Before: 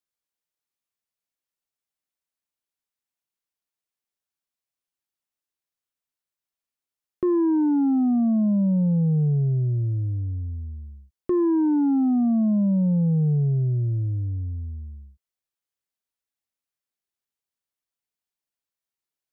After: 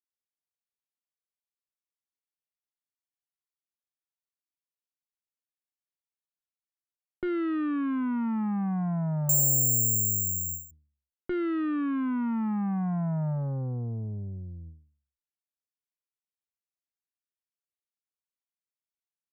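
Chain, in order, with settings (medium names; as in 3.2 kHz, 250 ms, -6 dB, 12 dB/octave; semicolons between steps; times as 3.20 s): resampled via 32 kHz; Chebyshev shaper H 3 -16 dB, 4 -12 dB, 5 -21 dB, 7 -24 dB, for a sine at -17.5 dBFS; 9.29–10.71 s: careless resampling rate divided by 6×, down none, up zero stuff; endings held to a fixed fall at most 120 dB/s; trim -8 dB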